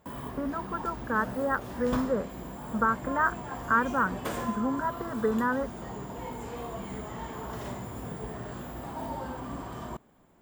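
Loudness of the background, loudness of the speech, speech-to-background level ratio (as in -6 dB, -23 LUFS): -38.0 LUFS, -30.0 LUFS, 8.0 dB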